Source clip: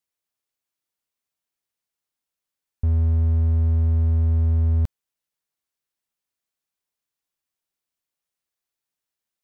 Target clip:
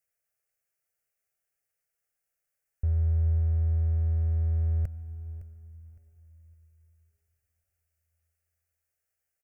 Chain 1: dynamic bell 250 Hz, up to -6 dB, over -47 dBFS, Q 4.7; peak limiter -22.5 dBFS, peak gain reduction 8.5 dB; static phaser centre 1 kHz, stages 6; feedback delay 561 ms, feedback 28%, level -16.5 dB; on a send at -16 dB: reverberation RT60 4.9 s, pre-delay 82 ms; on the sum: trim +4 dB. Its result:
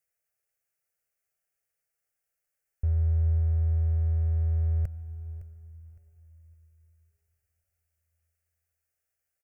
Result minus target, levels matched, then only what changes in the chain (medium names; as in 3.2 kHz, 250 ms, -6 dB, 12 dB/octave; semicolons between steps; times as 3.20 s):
250 Hz band -3.0 dB
remove: dynamic bell 250 Hz, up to -6 dB, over -47 dBFS, Q 4.7